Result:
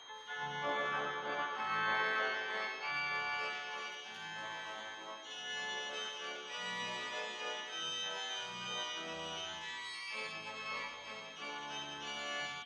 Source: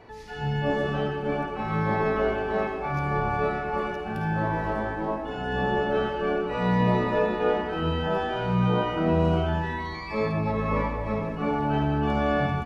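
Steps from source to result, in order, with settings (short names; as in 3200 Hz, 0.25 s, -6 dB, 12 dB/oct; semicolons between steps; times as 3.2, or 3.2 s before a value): band-pass sweep 1300 Hz -> 3200 Hz, 1.21–4.07; whine 3200 Hz -54 dBFS; harmoniser +3 st -9 dB, +4 st -17 dB, +12 st -10 dB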